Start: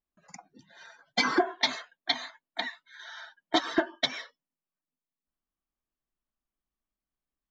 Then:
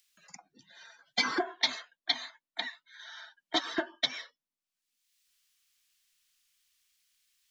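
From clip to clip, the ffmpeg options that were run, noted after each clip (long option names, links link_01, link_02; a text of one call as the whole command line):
ffmpeg -i in.wav -filter_complex "[0:a]equalizer=frequency=4300:width_type=o:width=2.7:gain=6.5,acrossover=split=340|750|1800[link_01][link_02][link_03][link_04];[link_04]acompressor=mode=upward:threshold=-45dB:ratio=2.5[link_05];[link_01][link_02][link_03][link_05]amix=inputs=4:normalize=0,volume=-7dB" out.wav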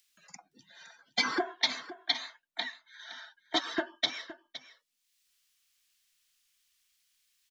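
ffmpeg -i in.wav -af "aecho=1:1:515:0.178" out.wav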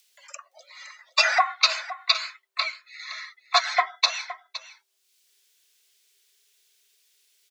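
ffmpeg -i in.wav -filter_complex "[0:a]afreqshift=390,acrossover=split=120|530|1500[link_01][link_02][link_03][link_04];[link_03]crystalizer=i=8:c=0[link_05];[link_01][link_02][link_05][link_04]amix=inputs=4:normalize=0,volume=8dB" out.wav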